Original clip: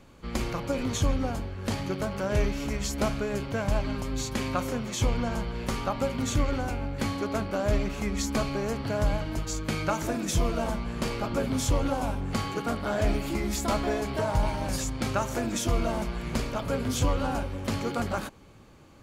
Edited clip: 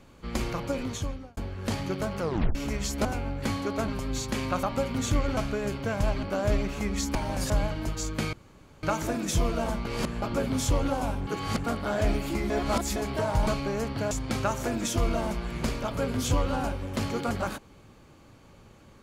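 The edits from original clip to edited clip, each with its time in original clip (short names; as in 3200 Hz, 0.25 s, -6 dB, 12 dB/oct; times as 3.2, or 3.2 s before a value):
0.64–1.37 fade out
2.2 tape stop 0.35 s
3.05–3.91 swap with 6.61–7.44
4.66–5.87 cut
8.36–9 swap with 14.47–14.82
9.83 insert room tone 0.50 s
10.85–11.22 reverse
12.27–12.64 reverse
13.5–13.96 reverse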